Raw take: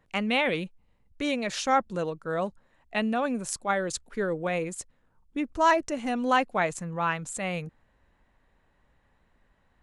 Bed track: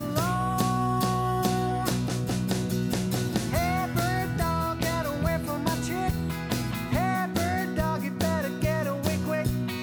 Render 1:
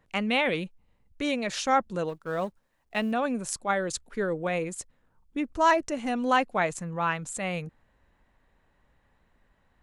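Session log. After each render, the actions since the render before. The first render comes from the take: 2.09–3.12 s: companding laws mixed up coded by A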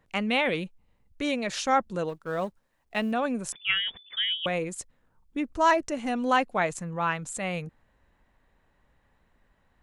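3.52–4.46 s: frequency inversion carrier 3.5 kHz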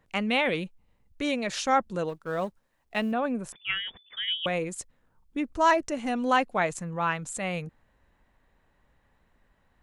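3.12–4.28 s: peaking EQ 6.6 kHz -10 dB 2.2 oct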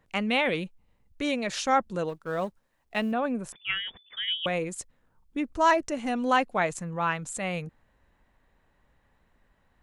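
no audible change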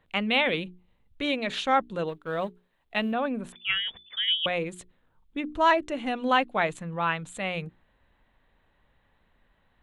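resonant high shelf 4.4 kHz -6.5 dB, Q 3; hum notches 60/120/180/240/300/360/420 Hz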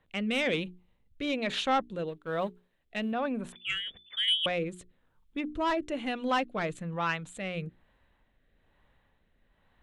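saturation -17 dBFS, distortion -16 dB; rotary cabinet horn 1.1 Hz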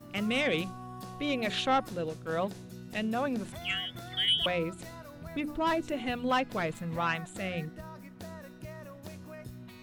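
add bed track -18 dB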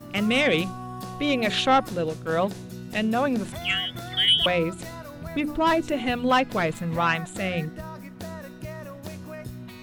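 trim +7.5 dB

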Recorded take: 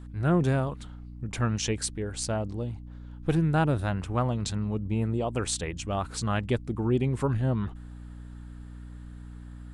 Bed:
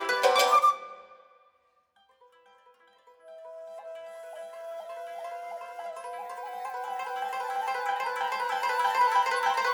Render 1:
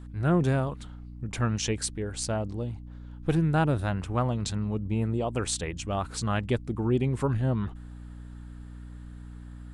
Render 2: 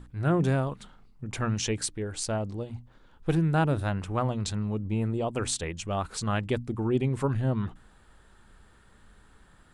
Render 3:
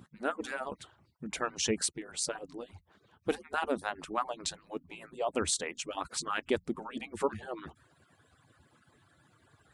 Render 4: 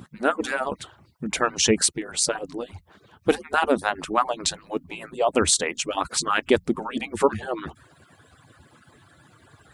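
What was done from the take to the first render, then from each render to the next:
no audible change
hum notches 60/120/180/240/300 Hz
harmonic-percussive separation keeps percussive; high-pass 64 Hz
trim +11 dB

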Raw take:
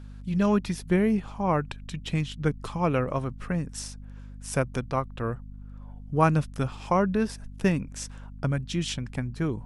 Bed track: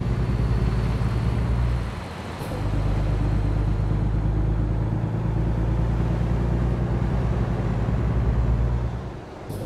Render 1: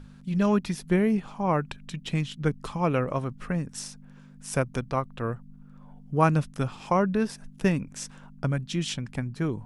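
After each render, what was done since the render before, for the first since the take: hum notches 50/100 Hz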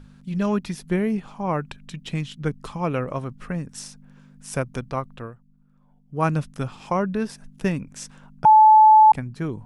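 5.14–6.26 s: dip -11 dB, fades 0.17 s; 8.45–9.12 s: bleep 866 Hz -8 dBFS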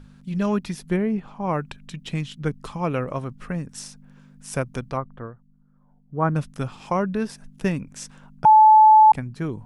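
0.96–1.42 s: low-pass 1.7 kHz -> 2.7 kHz 6 dB/octave; 4.97–6.36 s: Savitzky-Golay filter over 41 samples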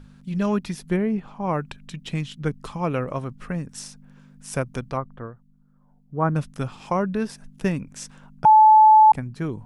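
dynamic bell 3.3 kHz, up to -4 dB, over -33 dBFS, Q 0.89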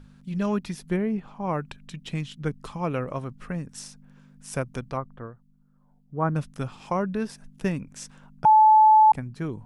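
trim -3 dB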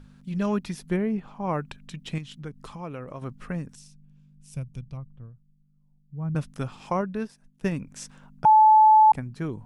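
2.18–3.22 s: compression 2:1, threshold -39 dBFS; 3.75–6.35 s: FFT filter 150 Hz 0 dB, 310 Hz -16 dB, 1.7 kHz -23 dB, 2.5 kHz -11 dB; 7.01–7.72 s: upward expansion, over -46 dBFS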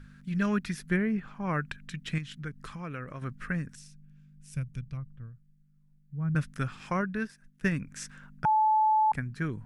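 FFT filter 150 Hz 0 dB, 880 Hz -9 dB, 1.6 kHz +9 dB, 3 kHz -1 dB

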